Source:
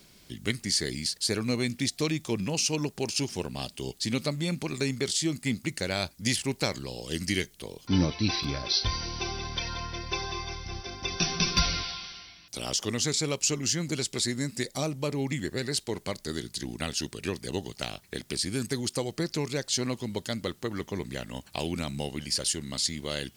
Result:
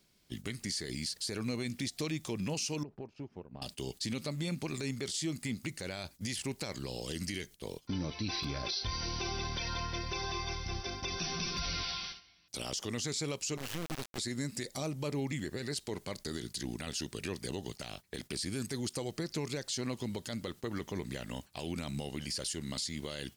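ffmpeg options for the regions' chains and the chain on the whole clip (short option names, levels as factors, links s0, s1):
-filter_complex "[0:a]asettb=1/sr,asplit=3[s0][s1][s2];[s0]atrim=end=2.834[s3];[s1]atrim=start=2.83:end=3.62,asetpts=PTS-STARTPTS,afade=t=in:d=0.004:c=qsin,afade=t=out:st=0.786:d=0.004:c=qsin,lowpass=1300,acompressor=threshold=0.0126:ratio=10:attack=3.2:release=140:knee=1:detection=peak[s4];[s2]atrim=start=3.616[s5];[s3][s4]acrossfade=d=0.004:c1=hsin:c2=qsin[s6];[s6][s5]acrossfade=d=0.004:c1=qsin:c2=hsin,asettb=1/sr,asplit=3[s7][s8][s9];[s7]atrim=end=13.574[s10];[s8]atrim=start=13.57:end=14.18,asetpts=PTS-STARTPTS,afade=t=in:d=0.004:c=qsin,afade=t=out:st=0.606:d=0.004:c=qsin,lowpass=f=3200:w=0.5412,lowpass=f=3200:w=1.3066,acompressor=threshold=0.0178:ratio=1.5:attack=3.2:release=140:knee=1:detection=peak,acrusher=bits=3:dc=4:mix=0:aa=0.000001[s11];[s9]atrim=start=14.176[s12];[s10][s11]acrossfade=d=0.004:c1=hsin:c2=qsin[s13];[s13][s12]acrossfade=d=0.004:c1=qsin:c2=hsin,agate=range=0.2:threshold=0.00794:ratio=16:detection=peak,acompressor=threshold=0.0251:ratio=3,alimiter=level_in=1.33:limit=0.0631:level=0:latency=1:release=16,volume=0.75"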